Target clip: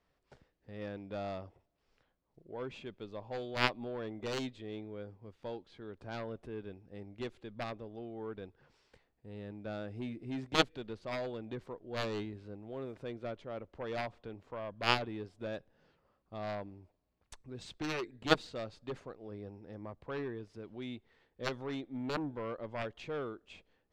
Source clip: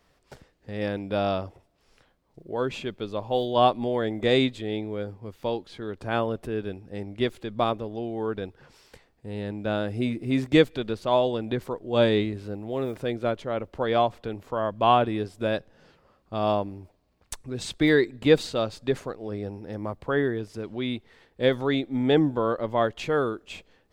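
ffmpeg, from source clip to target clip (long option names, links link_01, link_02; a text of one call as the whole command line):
ffmpeg -i in.wav -af "aeval=exprs='0.531*(cos(1*acos(clip(val(0)/0.531,-1,1)))-cos(1*PI/2))+0.237*(cos(3*acos(clip(val(0)/0.531,-1,1)))-cos(3*PI/2))':channel_layout=same,adynamicsmooth=sensitivity=5:basefreq=6500,volume=-3dB" out.wav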